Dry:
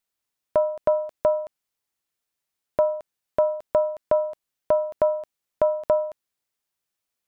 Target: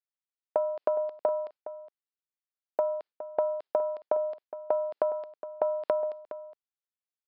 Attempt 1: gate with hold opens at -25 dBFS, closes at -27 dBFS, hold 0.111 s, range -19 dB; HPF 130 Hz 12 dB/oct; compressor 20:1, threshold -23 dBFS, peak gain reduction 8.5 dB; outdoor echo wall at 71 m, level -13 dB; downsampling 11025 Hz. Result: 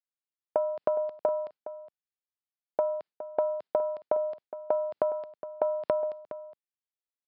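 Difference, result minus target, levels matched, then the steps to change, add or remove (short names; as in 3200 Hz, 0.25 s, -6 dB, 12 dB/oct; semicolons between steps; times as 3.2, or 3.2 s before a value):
125 Hz band +9.0 dB
change: HPF 330 Hz 12 dB/oct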